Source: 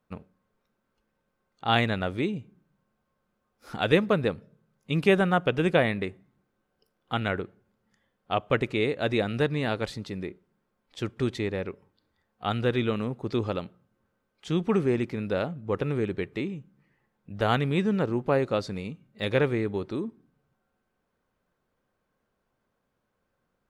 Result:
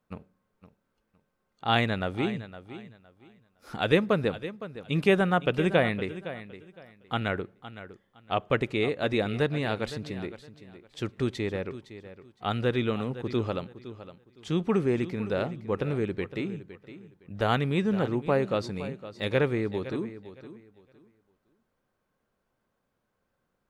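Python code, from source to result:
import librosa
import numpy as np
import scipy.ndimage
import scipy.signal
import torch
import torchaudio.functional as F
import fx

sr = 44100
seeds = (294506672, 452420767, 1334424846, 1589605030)

y = fx.echo_feedback(x, sr, ms=512, feedback_pct=23, wet_db=-14.0)
y = F.gain(torch.from_numpy(y), -1.0).numpy()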